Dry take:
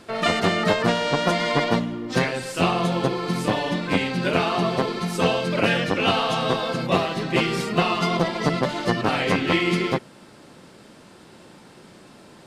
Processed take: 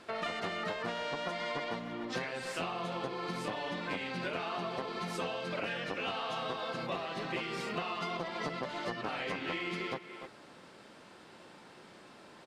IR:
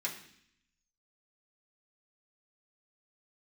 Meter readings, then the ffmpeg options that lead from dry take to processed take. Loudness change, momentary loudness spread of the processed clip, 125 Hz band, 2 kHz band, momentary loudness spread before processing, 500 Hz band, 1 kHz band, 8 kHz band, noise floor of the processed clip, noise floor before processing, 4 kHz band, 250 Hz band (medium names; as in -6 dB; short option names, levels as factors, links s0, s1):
-14.5 dB, 18 LU, -19.5 dB, -12.5 dB, 4 LU, -14.5 dB, -13.0 dB, -15.0 dB, -55 dBFS, -48 dBFS, -14.0 dB, -17.5 dB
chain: -filter_complex "[0:a]asplit=2[s0][s1];[s1]highpass=f=720:p=1,volume=2.82,asoftclip=type=tanh:threshold=0.501[s2];[s0][s2]amix=inputs=2:normalize=0,lowpass=f=3300:p=1,volume=0.501,asplit=2[s3][s4];[s4]adelay=290,highpass=300,lowpass=3400,asoftclip=type=hard:threshold=0.15,volume=0.2[s5];[s3][s5]amix=inputs=2:normalize=0,acompressor=threshold=0.0501:ratio=6,volume=0.398"